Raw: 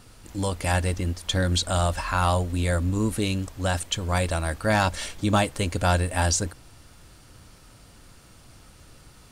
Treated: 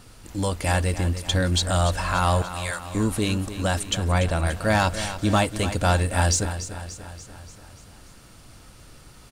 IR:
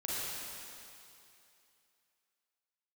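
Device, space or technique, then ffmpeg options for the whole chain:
parallel distortion: -filter_complex "[0:a]asettb=1/sr,asplit=3[a][b][c];[a]atrim=end=2.424[d];[b]atrim=start=2.42:end=2.95,asetpts=PTS-STARTPTS,afade=t=in:d=0.004:c=qsin,afade=t=out:st=0.526:d=0.004:c=qsin,highpass=1.1k[e];[c]atrim=start=2.946[f];[d][e]acrossfade=d=0.004:c1=hsin:c2=qsin[g];[g][f]acrossfade=d=0.004:c1=qsin:c2=hsin,asplit=2[h][i];[i]asoftclip=type=hard:threshold=-24.5dB,volume=-11.5dB[j];[h][j]amix=inputs=2:normalize=0,asettb=1/sr,asplit=3[k][l][m];[k]atrim=end=3.984[n];[l]atrim=start=3.98:end=4.47,asetpts=PTS-STARTPTS,afade=t=in:d=0.004:c=qsin,afade=t=out:st=0.486:d=0.004:c=qsin,bass=f=250:g=3,treble=f=4k:g=-7[o];[m]atrim=start=4.466[p];[n][o]acrossfade=d=0.004:c1=hsin:c2=qsin[q];[q][p]acrossfade=d=0.004:c1=qsin:c2=hsin,aecho=1:1:290|580|870|1160|1450|1740:0.251|0.143|0.0816|0.0465|0.0265|0.0151"

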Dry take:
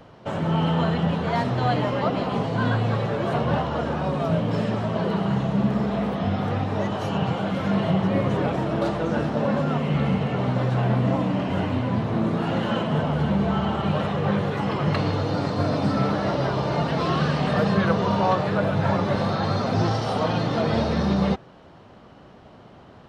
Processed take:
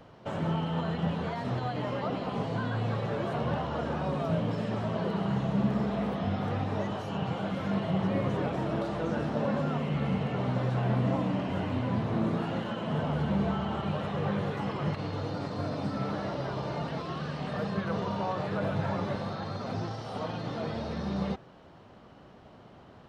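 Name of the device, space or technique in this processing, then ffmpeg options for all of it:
de-esser from a sidechain: -filter_complex "[0:a]asplit=2[a][b];[b]highpass=5.1k,apad=whole_len=1018142[c];[a][c]sidechaincompress=threshold=-49dB:ratio=6:attack=2.6:release=62,volume=-5dB"

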